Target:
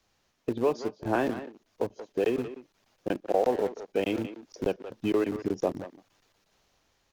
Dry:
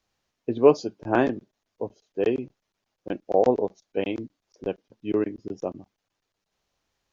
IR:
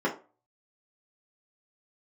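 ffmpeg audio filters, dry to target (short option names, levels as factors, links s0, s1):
-filter_complex "[0:a]dynaudnorm=f=220:g=11:m=3.76,acrossover=split=450|710[s0][s1][s2];[s0]alimiter=limit=0.126:level=0:latency=1:release=17[s3];[s3][s1][s2]amix=inputs=3:normalize=0,acompressor=threshold=0.00631:ratio=2,asplit=2[s4][s5];[s5]aeval=exprs='val(0)*gte(abs(val(0)),0.0141)':c=same,volume=0.398[s6];[s4][s6]amix=inputs=2:normalize=0,asplit=2[s7][s8];[s8]adelay=180,highpass=300,lowpass=3400,asoftclip=type=hard:threshold=0.0316,volume=0.316[s9];[s7][s9]amix=inputs=2:normalize=0,volume=2" -ar 44100 -c:a libmp3lame -b:a 128k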